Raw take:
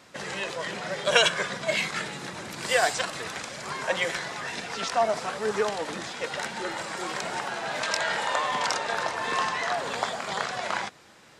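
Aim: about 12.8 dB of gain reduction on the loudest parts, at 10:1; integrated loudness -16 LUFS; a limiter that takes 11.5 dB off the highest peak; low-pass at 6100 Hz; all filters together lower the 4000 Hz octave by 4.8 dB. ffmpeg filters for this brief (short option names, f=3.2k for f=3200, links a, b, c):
-af "lowpass=6.1k,equalizer=f=4k:t=o:g=-6,acompressor=threshold=-30dB:ratio=10,volume=21dB,alimiter=limit=-7dB:level=0:latency=1"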